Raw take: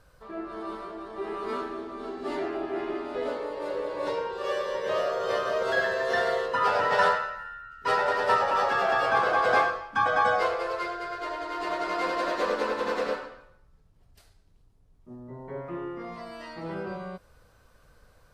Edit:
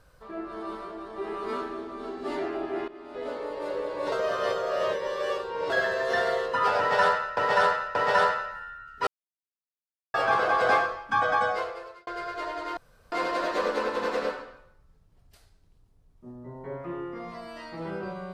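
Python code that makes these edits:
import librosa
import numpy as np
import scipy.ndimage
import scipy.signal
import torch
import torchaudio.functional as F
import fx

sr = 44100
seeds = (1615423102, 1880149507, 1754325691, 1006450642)

y = fx.edit(x, sr, fx.fade_in_from(start_s=2.88, length_s=0.63, floor_db=-17.5),
    fx.reverse_span(start_s=4.12, length_s=1.58),
    fx.repeat(start_s=6.79, length_s=0.58, count=3),
    fx.silence(start_s=7.91, length_s=1.07),
    fx.fade_out_span(start_s=10.1, length_s=0.81),
    fx.room_tone_fill(start_s=11.61, length_s=0.35), tone=tone)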